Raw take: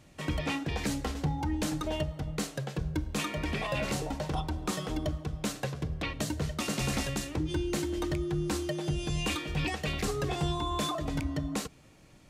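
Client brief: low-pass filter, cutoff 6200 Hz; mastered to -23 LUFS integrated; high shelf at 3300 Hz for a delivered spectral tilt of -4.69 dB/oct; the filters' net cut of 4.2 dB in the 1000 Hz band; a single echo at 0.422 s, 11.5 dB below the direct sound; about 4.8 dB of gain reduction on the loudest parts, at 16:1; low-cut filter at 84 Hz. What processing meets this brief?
HPF 84 Hz; LPF 6200 Hz; bell 1000 Hz -6 dB; high shelf 3300 Hz +4.5 dB; compressor 16:1, threshold -32 dBFS; echo 0.422 s -11.5 dB; gain +14 dB

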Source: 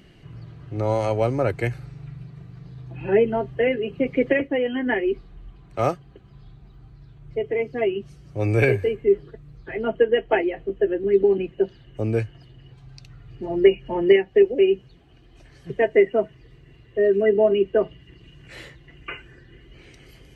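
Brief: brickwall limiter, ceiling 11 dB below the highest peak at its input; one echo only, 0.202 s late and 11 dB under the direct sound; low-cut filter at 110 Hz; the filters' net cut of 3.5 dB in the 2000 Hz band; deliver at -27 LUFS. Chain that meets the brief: HPF 110 Hz; bell 2000 Hz -4 dB; limiter -15.5 dBFS; echo 0.202 s -11 dB; gain -1 dB

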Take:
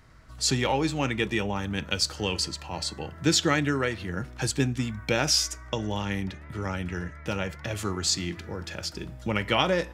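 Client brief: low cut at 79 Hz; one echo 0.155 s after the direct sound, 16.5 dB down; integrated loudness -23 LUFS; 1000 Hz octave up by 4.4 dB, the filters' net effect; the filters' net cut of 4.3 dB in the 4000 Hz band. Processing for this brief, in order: HPF 79 Hz; bell 1000 Hz +6 dB; bell 4000 Hz -6 dB; echo 0.155 s -16.5 dB; gain +5 dB

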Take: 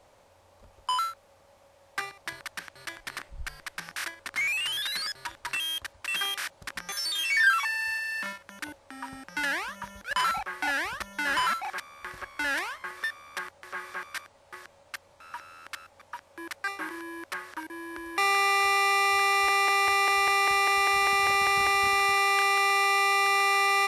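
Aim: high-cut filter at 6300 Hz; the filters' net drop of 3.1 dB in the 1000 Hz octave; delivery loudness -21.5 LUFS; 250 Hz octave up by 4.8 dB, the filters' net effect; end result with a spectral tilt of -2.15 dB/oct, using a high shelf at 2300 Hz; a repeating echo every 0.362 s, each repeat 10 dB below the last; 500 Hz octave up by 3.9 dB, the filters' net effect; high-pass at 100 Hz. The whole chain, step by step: HPF 100 Hz; LPF 6300 Hz; bell 250 Hz +6 dB; bell 500 Hz +3.5 dB; bell 1000 Hz -4 dB; high shelf 2300 Hz -6 dB; feedback echo 0.362 s, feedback 32%, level -10 dB; gain +7.5 dB

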